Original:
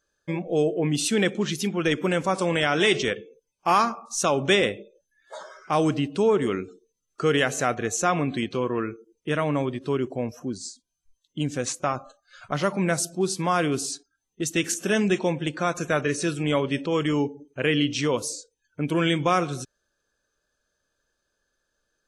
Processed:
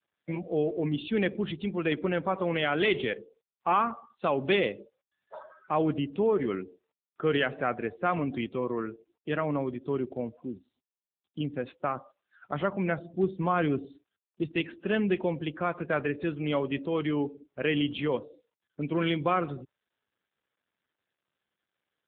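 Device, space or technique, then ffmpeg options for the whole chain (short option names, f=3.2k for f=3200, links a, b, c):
mobile call with aggressive noise cancelling: -filter_complex "[0:a]asettb=1/sr,asplit=3[a][b][c];[a]atrim=end=13.024[d];[b]atrim=start=13.02:end=14.52,asetpts=PTS-STARTPTS,afade=t=in:d=0.004:c=qsin,afade=t=out:st=1.496:d=0.004:c=qsin,lowshelf=f=340:g=4.5[e];[c]atrim=start=14.516[f];[d][e]acrossfade=d=0.004:c1=hsin:c2=qsin[g];[g][f]acrossfade=d=0.004:c1=qsin:c2=hsin,highpass=130,afftdn=nr=16:nf=-40,volume=-4dB" -ar 8000 -c:a libopencore_amrnb -b:a 7950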